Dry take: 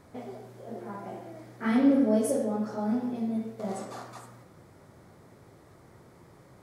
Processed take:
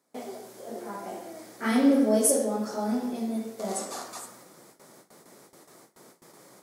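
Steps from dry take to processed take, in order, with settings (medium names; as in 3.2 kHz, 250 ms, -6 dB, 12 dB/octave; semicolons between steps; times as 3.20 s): high-pass 170 Hz 24 dB/octave; tone controls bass -5 dB, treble +12 dB; gate with hold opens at -45 dBFS; trim +3 dB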